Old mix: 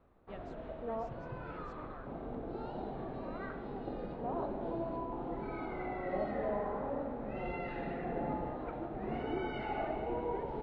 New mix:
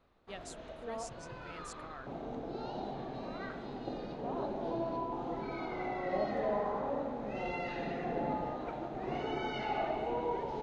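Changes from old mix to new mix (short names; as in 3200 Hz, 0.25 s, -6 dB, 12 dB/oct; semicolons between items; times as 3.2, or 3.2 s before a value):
first sound -5.5 dB; master: remove tape spacing loss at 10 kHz 42 dB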